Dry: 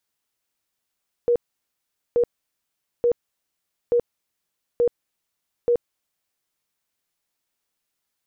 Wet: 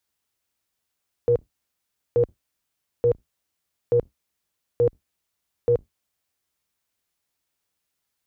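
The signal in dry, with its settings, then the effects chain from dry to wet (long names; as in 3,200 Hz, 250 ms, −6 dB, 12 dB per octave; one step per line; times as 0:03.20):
tone bursts 478 Hz, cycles 37, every 0.88 s, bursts 6, −15 dBFS
sub-octave generator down 2 octaves, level 0 dB
high-pass filter 40 Hz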